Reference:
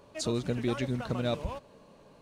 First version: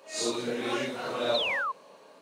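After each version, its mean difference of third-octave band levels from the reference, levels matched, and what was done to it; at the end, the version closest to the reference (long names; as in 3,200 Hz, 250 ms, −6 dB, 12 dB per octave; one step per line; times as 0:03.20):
6.5 dB: random phases in long frames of 200 ms
high-pass filter 440 Hz 12 dB per octave
sound drawn into the spectrogram fall, 0:01.34–0:01.72, 1,000–4,300 Hz −36 dBFS
level +6 dB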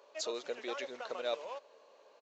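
9.0 dB: Chebyshev high-pass filter 470 Hz, order 3
downsampling to 16,000 Hz
level −2.5 dB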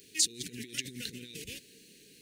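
13.5 dB: compressor whose output falls as the input rises −35 dBFS, ratio −0.5
inverse Chebyshev band-stop filter 600–1,300 Hz, stop band 40 dB
RIAA equalisation recording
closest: first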